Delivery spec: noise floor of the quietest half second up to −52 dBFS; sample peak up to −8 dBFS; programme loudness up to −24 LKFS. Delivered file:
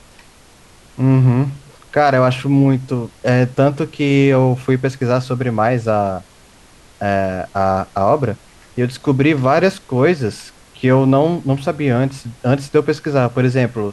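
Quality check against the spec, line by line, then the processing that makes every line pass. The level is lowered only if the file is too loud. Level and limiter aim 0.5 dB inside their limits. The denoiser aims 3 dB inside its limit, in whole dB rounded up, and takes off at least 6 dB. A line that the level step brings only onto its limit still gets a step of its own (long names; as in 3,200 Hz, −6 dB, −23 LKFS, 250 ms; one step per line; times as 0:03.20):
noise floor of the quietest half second −46 dBFS: out of spec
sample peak −2.5 dBFS: out of spec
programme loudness −16.5 LKFS: out of spec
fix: level −8 dB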